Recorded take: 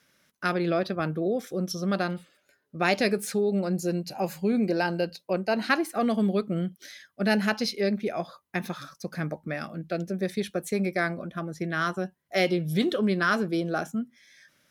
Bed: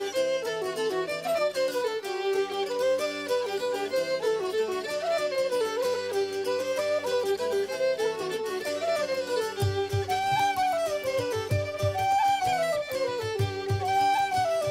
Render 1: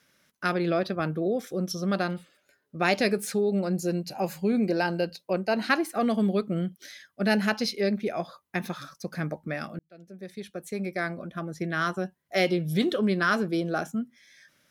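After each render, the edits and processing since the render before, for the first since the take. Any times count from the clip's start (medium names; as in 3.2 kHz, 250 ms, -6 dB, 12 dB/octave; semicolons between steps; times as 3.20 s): 9.79–11.58 s: fade in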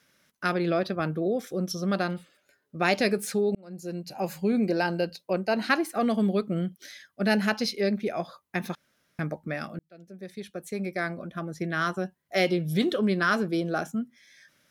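3.55–4.35 s: fade in; 8.75–9.19 s: room tone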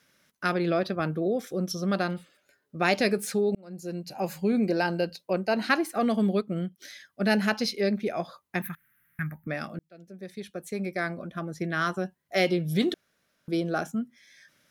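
6.38–6.78 s: upward expansion, over -39 dBFS; 8.62–9.47 s: FFT filter 160 Hz 0 dB, 500 Hz -25 dB, 1.8 kHz +6 dB, 5 kHz -22 dB, 8.5 kHz -7 dB, 13 kHz +14 dB; 12.94–13.48 s: room tone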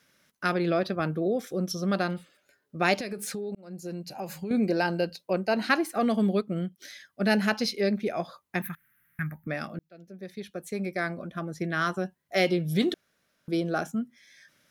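2.94–4.51 s: compression 8:1, threshold -30 dBFS; 9.67–10.52 s: peaking EQ 8.5 kHz -8 dB 0.44 oct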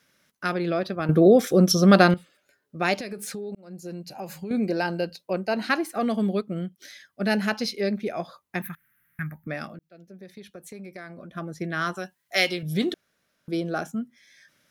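1.09–2.14 s: gain +12 dB; 9.71–11.36 s: compression 3:1, threshold -39 dBFS; 11.95–12.63 s: tilt shelf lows -8 dB, about 830 Hz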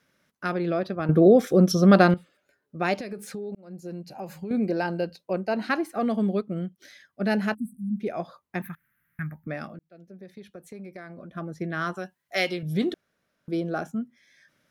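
7.54–8.00 s: spectral selection erased 300–7700 Hz; treble shelf 2.2 kHz -8 dB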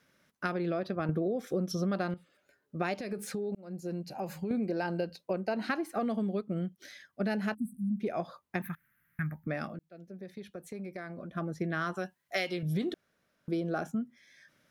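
compression 12:1, threshold -28 dBFS, peak gain reduction 17.5 dB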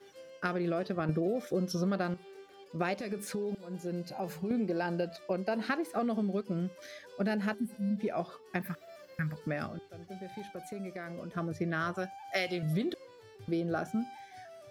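add bed -24.5 dB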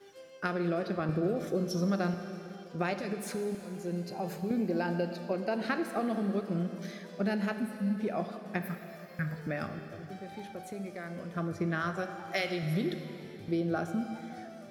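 plate-style reverb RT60 3.2 s, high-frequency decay 0.95×, DRR 7 dB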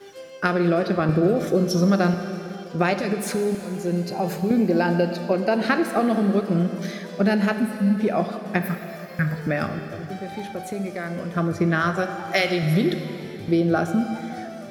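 trim +11 dB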